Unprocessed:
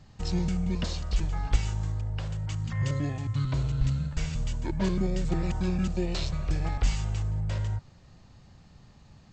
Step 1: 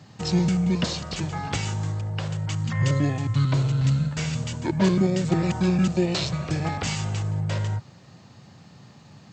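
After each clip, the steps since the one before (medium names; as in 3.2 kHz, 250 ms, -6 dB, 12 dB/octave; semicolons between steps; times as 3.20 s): high-pass 110 Hz 24 dB/octave; trim +8 dB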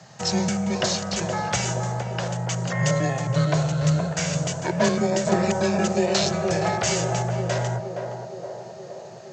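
fifteen-band graphic EQ 250 Hz -11 dB, 630 Hz +11 dB, 1.6 kHz +6 dB, 6.3 kHz +10 dB; band-passed feedback delay 468 ms, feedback 73%, band-pass 440 Hz, level -3 dB; frequency shift +18 Hz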